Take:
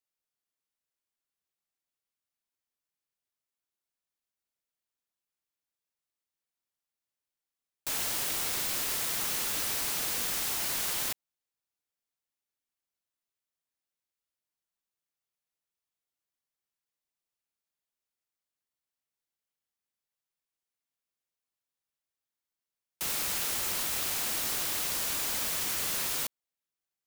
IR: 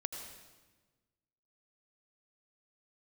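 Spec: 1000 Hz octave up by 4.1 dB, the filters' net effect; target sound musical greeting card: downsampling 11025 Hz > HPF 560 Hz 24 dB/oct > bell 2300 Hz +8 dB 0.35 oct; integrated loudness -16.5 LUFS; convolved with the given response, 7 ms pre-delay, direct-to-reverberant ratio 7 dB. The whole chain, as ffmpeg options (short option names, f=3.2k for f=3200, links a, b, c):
-filter_complex "[0:a]equalizer=f=1k:t=o:g=5,asplit=2[a][b];[1:a]atrim=start_sample=2205,adelay=7[c];[b][c]afir=irnorm=-1:irlink=0,volume=-7dB[d];[a][d]amix=inputs=2:normalize=0,aresample=11025,aresample=44100,highpass=f=560:w=0.5412,highpass=f=560:w=1.3066,equalizer=f=2.3k:t=o:w=0.35:g=8,volume=16.5dB"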